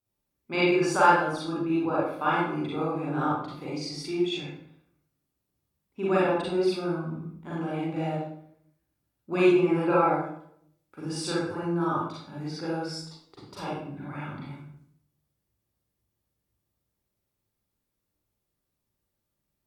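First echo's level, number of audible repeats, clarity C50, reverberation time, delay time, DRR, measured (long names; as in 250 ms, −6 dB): no echo audible, no echo audible, −2.0 dB, 0.70 s, no echo audible, −8.0 dB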